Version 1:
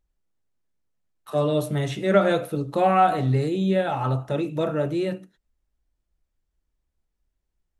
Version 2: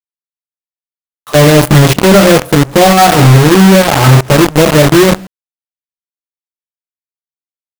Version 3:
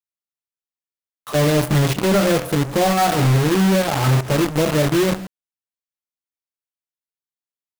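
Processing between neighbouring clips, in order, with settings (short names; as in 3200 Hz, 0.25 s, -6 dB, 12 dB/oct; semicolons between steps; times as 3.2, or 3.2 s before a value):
low shelf 470 Hz +10.5 dB; in parallel at -0.5 dB: limiter -12 dBFS, peak gain reduction 10.5 dB; on the sum: companded quantiser 2-bit; gain -1 dB
vocal rider 0.5 s; hard clip -9 dBFS, distortion -17 dB; gain -3.5 dB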